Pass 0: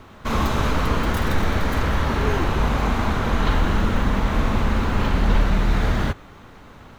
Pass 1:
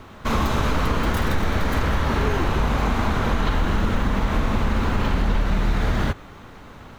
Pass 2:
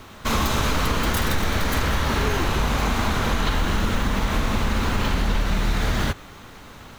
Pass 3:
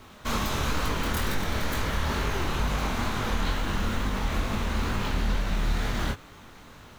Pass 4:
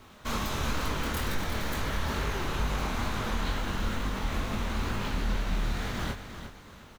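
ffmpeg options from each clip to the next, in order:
ffmpeg -i in.wav -af "acompressor=threshold=-18dB:ratio=6,volume=2dB" out.wav
ffmpeg -i in.wav -af "highshelf=frequency=2900:gain=11,volume=-1.5dB" out.wav
ffmpeg -i in.wav -af "flanger=delay=19.5:depth=7.7:speed=2.2,volume=-3dB" out.wav
ffmpeg -i in.wav -af "aecho=1:1:353|706|1059:0.316|0.0949|0.0285,volume=-3.5dB" out.wav

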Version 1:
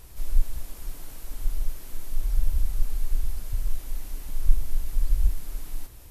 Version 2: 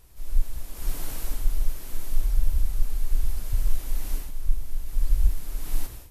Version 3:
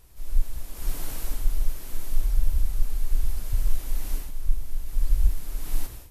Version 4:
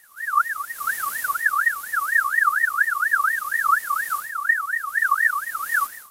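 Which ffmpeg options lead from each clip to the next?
ffmpeg -i in.wav -af "dynaudnorm=framelen=180:gausssize=3:maxgain=16.5dB,volume=-7.5dB" out.wav
ffmpeg -i in.wav -af anull out.wav
ffmpeg -i in.wav -af "crystalizer=i=2:c=0,aeval=exprs='val(0)*sin(2*PI*1500*n/s+1500*0.25/4.2*sin(2*PI*4.2*n/s))':channel_layout=same" out.wav

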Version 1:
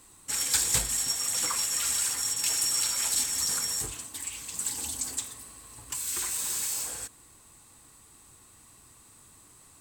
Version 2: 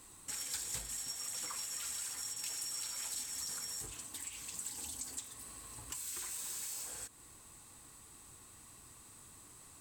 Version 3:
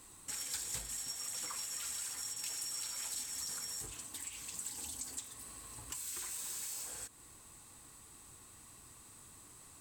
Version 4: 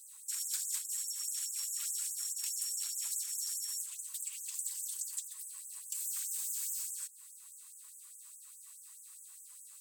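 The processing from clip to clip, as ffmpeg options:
ffmpeg -i in.wav -af "acompressor=threshold=-43dB:ratio=2.5,volume=-1.5dB" out.wav
ffmpeg -i in.wav -af anull out.wav
ffmpeg -i in.wav -af "crystalizer=i=2:c=0,afftfilt=real='re*gte(b*sr/1024,840*pow(6300/840,0.5+0.5*sin(2*PI*4.8*pts/sr)))':imag='im*gte(b*sr/1024,840*pow(6300/840,0.5+0.5*sin(2*PI*4.8*pts/sr)))':win_size=1024:overlap=0.75,volume=-5dB" out.wav

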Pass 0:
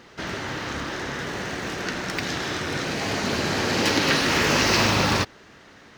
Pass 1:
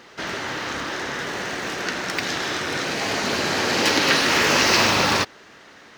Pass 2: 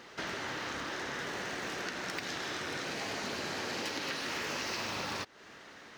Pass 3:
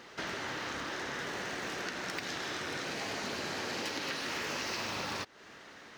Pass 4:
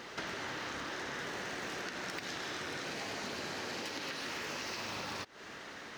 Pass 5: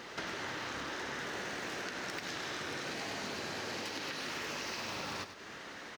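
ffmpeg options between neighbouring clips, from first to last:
ffmpeg -i in.wav -af "lowshelf=frequency=200:gain=-11.5,volume=3.5dB" out.wav
ffmpeg -i in.wav -af "acompressor=threshold=-30dB:ratio=6,volume=-5dB" out.wav
ffmpeg -i in.wav -af anull out.wav
ffmpeg -i in.wav -af "acompressor=threshold=-42dB:ratio=6,volume=4.5dB" out.wav
ffmpeg -i in.wav -af "aecho=1:1:99|198|297|396:0.316|0.12|0.0457|0.0174" out.wav

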